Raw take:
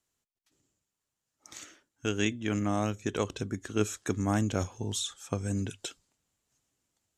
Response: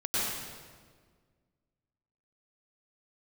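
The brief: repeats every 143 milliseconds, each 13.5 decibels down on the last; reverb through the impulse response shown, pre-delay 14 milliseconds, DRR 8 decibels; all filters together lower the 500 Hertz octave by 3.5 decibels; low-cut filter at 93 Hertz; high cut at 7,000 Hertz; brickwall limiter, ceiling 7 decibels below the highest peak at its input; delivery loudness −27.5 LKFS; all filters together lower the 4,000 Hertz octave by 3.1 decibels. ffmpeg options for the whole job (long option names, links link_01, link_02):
-filter_complex "[0:a]highpass=93,lowpass=7000,equalizer=frequency=500:width_type=o:gain=-4.5,equalizer=frequency=4000:width_type=o:gain=-3.5,alimiter=limit=-21dB:level=0:latency=1,aecho=1:1:143|286:0.211|0.0444,asplit=2[link_01][link_02];[1:a]atrim=start_sample=2205,adelay=14[link_03];[link_02][link_03]afir=irnorm=-1:irlink=0,volume=-17dB[link_04];[link_01][link_04]amix=inputs=2:normalize=0,volume=6.5dB"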